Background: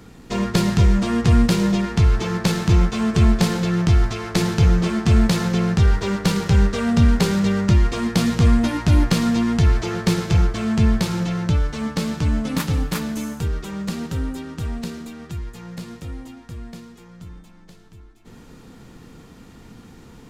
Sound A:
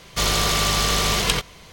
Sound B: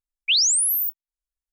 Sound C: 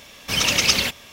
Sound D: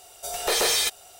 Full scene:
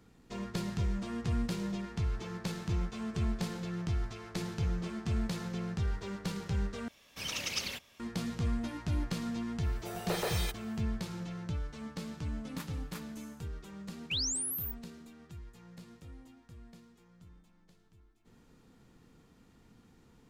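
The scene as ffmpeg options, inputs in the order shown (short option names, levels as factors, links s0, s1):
-filter_complex "[0:a]volume=0.133[s0];[4:a]equalizer=f=7300:t=o:w=2.6:g=-11.5[s1];[s0]asplit=2[s2][s3];[s2]atrim=end=6.884[s4];[3:a]atrim=end=1.12,asetpts=PTS-STARTPTS,volume=0.133[s5];[s3]atrim=start=7.996[s6];[s1]atrim=end=1.19,asetpts=PTS-STARTPTS,volume=0.398,afade=t=in:d=0.004:c=hsin,afade=t=out:st=1.186:d=0.004:c=hsin,adelay=424242S[s7];[2:a]atrim=end=1.52,asetpts=PTS-STARTPTS,volume=0.178,afade=t=in:d=0.004:c=hsin,afade=t=out:st=1.516:d=0.004:c=hsin,adelay=13820[s8];[s4][s5]acrossfade=d=0.004:c1=hsin:c2=hsin[s9];[s9][s6]acrossfade=d=0.004:c1=hsin:c2=hsin[s10];[s10][s7][s8]amix=inputs=3:normalize=0"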